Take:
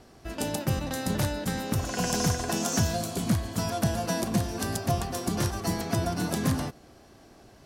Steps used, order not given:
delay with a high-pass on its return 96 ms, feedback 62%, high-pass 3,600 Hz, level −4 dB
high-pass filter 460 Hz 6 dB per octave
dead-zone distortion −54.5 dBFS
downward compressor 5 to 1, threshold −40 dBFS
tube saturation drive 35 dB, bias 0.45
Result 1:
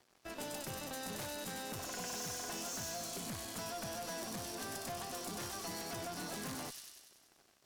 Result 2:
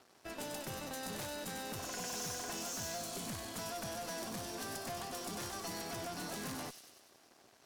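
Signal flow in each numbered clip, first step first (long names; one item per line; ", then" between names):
high-pass filter, then dead-zone distortion, then delay with a high-pass on its return, then tube saturation, then downward compressor
dead-zone distortion, then high-pass filter, then tube saturation, then downward compressor, then delay with a high-pass on its return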